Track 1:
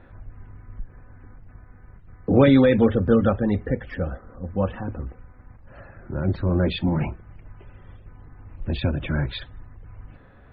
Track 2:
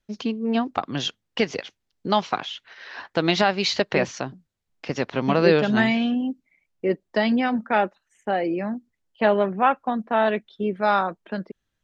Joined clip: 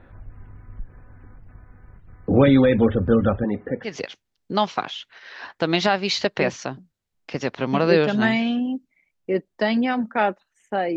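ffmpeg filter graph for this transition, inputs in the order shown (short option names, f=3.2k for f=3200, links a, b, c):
-filter_complex "[0:a]asettb=1/sr,asplit=3[a][b][c];[a]atrim=end=3.444[d];[b]atrim=start=3.44:end=3.96,asetpts=PTS-STARTPTS,afade=t=in:d=0.004:c=qsin,afade=t=out:st=0.516:d=0.004:c=qsin,highpass=200,lowpass=2.3k[e];[c]atrim=start=3.956[f];[d][e]acrossfade=d=0.004:c1=hsin:c2=qsin[g];[g][f]acrossfade=d=0.004:c1=qsin:c2=hsin,apad=whole_dur=10.96,atrim=end=10.96,atrim=end=3.96,asetpts=PTS-STARTPTS[h];[1:a]atrim=start=1.37:end=8.51,asetpts=PTS-STARTPTS[i];[h][i]acrossfade=d=0.14:c1=tri:c2=tri"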